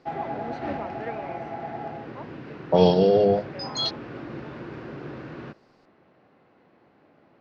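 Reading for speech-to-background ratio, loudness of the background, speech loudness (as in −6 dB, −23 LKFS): 14.5 dB, −36.0 LKFS, −21.5 LKFS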